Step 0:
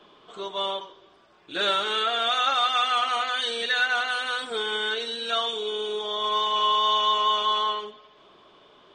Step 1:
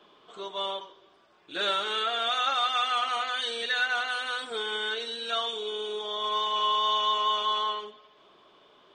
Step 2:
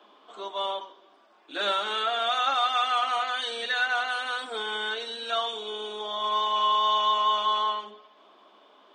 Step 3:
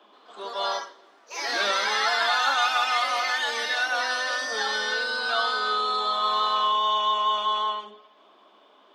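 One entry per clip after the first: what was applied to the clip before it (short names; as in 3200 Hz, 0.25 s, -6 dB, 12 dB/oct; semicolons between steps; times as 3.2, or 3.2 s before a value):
low shelf 150 Hz -6 dB; gain -3.5 dB
rippled Chebyshev high-pass 200 Hz, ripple 6 dB; notches 60/120/180/240/300/360/420 Hz; gain +5 dB
echoes that change speed 0.128 s, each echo +3 st, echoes 3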